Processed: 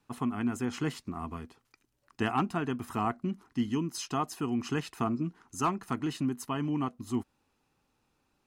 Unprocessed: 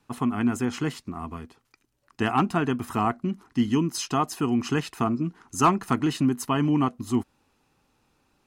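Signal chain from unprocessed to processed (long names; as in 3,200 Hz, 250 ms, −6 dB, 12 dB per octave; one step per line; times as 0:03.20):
speech leveller within 4 dB 0.5 s
level −7 dB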